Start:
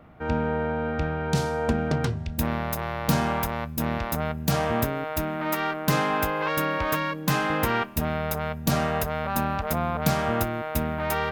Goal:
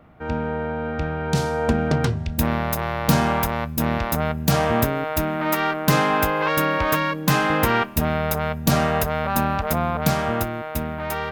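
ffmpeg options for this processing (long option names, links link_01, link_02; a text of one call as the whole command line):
ffmpeg -i in.wav -af "dynaudnorm=framelen=210:gausssize=13:maxgain=5.5dB" out.wav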